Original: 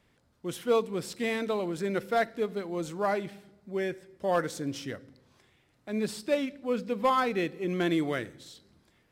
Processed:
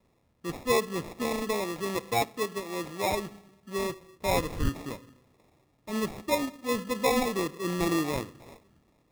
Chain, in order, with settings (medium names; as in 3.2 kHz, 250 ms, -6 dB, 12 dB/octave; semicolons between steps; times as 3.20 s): 4.25–4.68 s: wind noise 100 Hz -29 dBFS; vibrato 1.9 Hz 36 cents; sample-and-hold 29×; 1.64–3.12 s: bass shelf 130 Hz -10 dB